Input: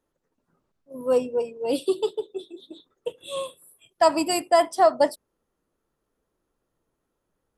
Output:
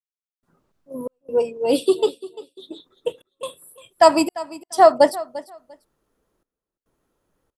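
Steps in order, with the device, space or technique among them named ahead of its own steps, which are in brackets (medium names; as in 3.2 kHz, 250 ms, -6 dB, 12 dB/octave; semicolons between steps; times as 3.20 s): trance gate with a delay (trance gate "..xxx.xxxx" 70 bpm -60 dB; feedback delay 346 ms, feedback 19%, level -17.5 dB); trim +6 dB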